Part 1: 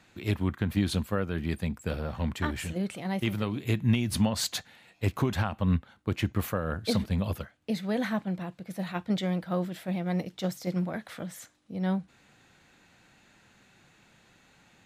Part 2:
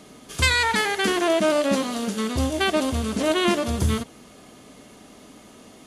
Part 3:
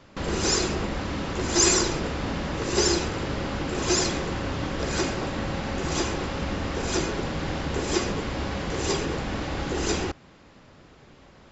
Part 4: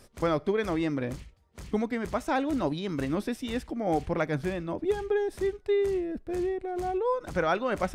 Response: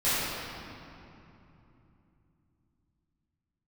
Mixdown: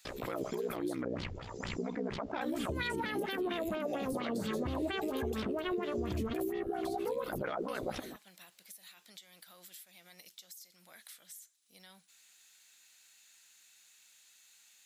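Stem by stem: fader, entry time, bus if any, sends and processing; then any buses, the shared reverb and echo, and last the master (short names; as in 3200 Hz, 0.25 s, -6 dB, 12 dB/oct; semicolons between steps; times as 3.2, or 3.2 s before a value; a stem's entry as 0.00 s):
0.0 dB, 0.00 s, muted 1.02–2.41, bus A, no send, high shelf 2500 Hz +9.5 dB; limiter -26 dBFS, peak gain reduction 15 dB
-1.5 dB, 2.30 s, bus B, no send, high shelf 4700 Hz -11 dB; compressor, threshold -25 dBFS, peak gain reduction 9.5 dB
-13.0 dB, 0.00 s, bus A, no send, compressor 6:1, threshold -34 dBFS, peak gain reduction 17 dB; auto duck -8 dB, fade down 1.40 s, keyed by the first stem
-6.0 dB, 0.05 s, bus B, no send, ring modulator 31 Hz; low shelf 120 Hz -12 dB; fast leveller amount 70%
bus A: 0.0 dB, differentiator; compressor 6:1, threshold -50 dBFS, peak gain reduction 18.5 dB
bus B: 0.0 dB, LFO low-pass sine 4.3 Hz 360–3900 Hz; compressor, threshold -30 dBFS, peak gain reduction 10.5 dB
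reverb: off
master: limiter -26.5 dBFS, peak gain reduction 6.5 dB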